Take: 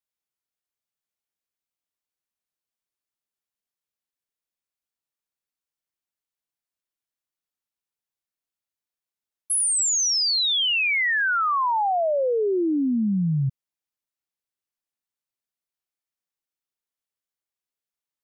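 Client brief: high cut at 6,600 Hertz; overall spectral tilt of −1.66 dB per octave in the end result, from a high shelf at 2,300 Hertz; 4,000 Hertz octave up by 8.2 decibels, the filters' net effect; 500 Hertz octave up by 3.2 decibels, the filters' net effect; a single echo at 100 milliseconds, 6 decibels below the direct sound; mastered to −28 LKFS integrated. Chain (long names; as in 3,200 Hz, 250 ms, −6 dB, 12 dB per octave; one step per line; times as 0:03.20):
low-pass filter 6,600 Hz
parametric band 500 Hz +3.5 dB
high-shelf EQ 2,300 Hz +7 dB
parametric band 4,000 Hz +4.5 dB
single-tap delay 100 ms −6 dB
level −13 dB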